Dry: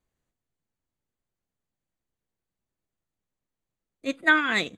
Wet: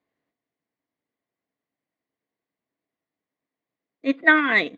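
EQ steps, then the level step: speaker cabinet 150–4800 Hz, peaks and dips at 280 Hz +10 dB, 450 Hz +6 dB, 670 Hz +8 dB, 1100 Hz +6 dB, 2000 Hz +10 dB; notch 1300 Hz, Q 20; -1.0 dB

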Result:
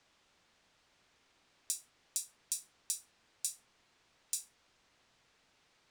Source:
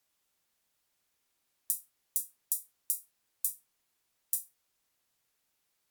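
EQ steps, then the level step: air absorption 120 m; +14.0 dB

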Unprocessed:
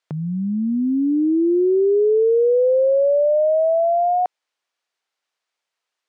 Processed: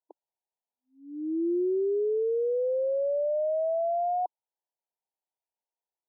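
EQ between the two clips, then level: brick-wall FIR band-pass 310–1000 Hz; bell 500 Hz -9 dB 2 oct; -2.5 dB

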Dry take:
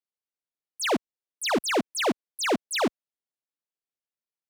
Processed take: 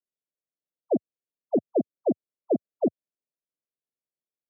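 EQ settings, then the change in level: HPF 100 Hz 24 dB/oct; steep low-pass 680 Hz 72 dB/oct; +1.5 dB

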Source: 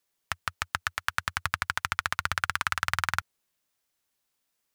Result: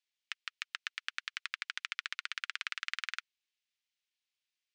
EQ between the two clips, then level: ladder high-pass 1900 Hz, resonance 25%; air absorption 120 m; +2.5 dB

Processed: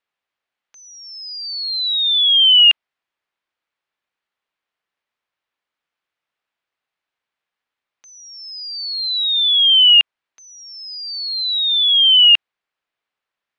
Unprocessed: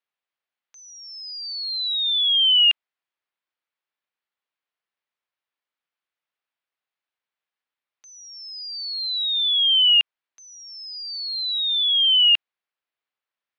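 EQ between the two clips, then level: air absorption 79 m; +7.5 dB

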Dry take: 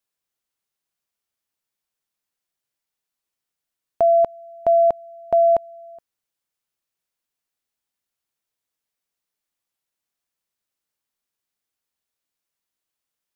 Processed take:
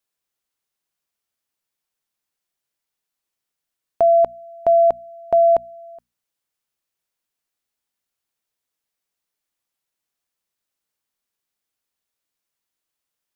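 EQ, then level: notches 60/120/180/240 Hz; +1.5 dB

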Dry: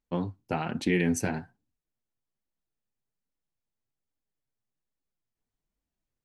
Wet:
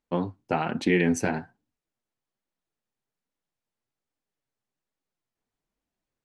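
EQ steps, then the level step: LPF 10000 Hz; low shelf 150 Hz -11 dB; high shelf 3000 Hz -6.5 dB; +6.0 dB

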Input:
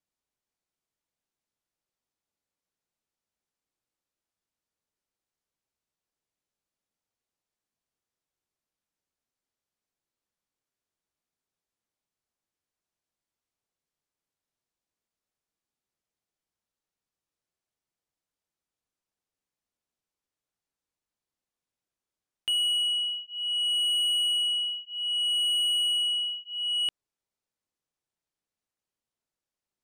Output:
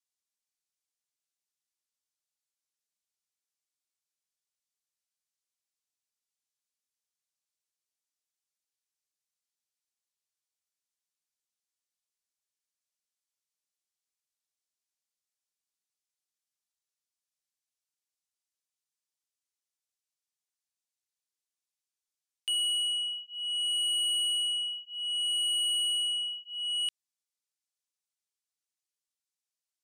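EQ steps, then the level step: band-pass 7600 Hz, Q 0.69; +2.5 dB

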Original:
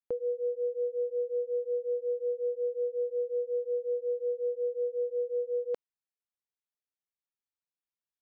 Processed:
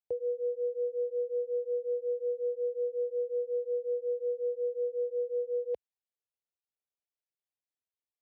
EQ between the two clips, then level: HPF 58 Hz 24 dB/oct; air absorption 230 m; fixed phaser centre 540 Hz, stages 4; 0.0 dB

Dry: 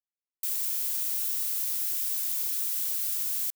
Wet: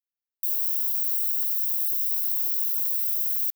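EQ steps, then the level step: differentiator; low shelf 420 Hz -7.5 dB; fixed phaser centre 2400 Hz, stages 6; 0.0 dB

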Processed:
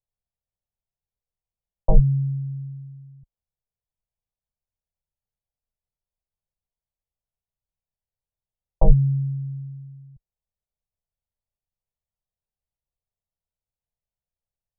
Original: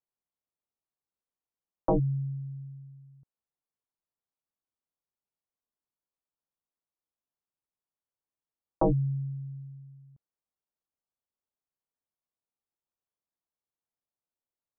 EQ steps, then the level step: LPF 1100 Hz; tilt -4.5 dB/oct; fixed phaser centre 720 Hz, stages 4; -1.5 dB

